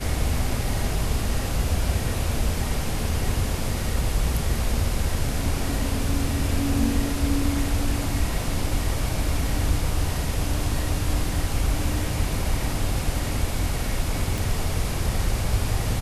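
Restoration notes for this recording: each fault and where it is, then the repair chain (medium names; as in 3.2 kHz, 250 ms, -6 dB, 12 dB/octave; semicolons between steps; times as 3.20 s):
14.38 s: pop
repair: de-click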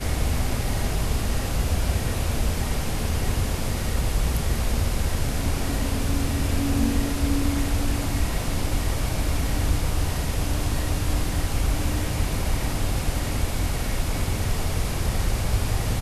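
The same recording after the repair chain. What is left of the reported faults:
nothing left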